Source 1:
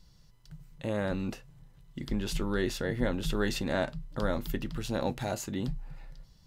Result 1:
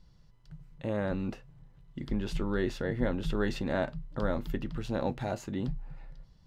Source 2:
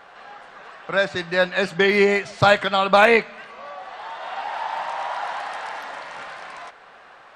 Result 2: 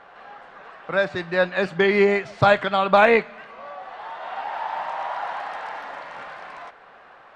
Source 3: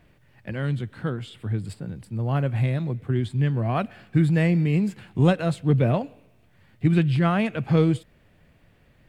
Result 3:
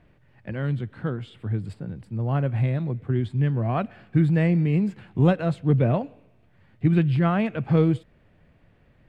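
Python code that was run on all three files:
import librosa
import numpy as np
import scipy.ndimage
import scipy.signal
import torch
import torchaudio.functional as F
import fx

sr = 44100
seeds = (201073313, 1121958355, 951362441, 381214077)

y = fx.lowpass(x, sr, hz=2100.0, slope=6)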